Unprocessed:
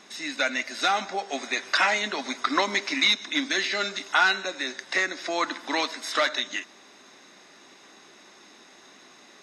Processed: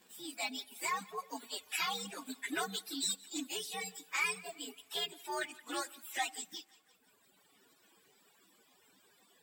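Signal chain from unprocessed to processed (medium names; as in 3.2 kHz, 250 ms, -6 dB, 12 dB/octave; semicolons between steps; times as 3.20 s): frequency axis rescaled in octaves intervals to 127%; two-band feedback delay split 780 Hz, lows 91 ms, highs 172 ms, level -12 dB; reverb removal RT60 1.5 s; trim -8 dB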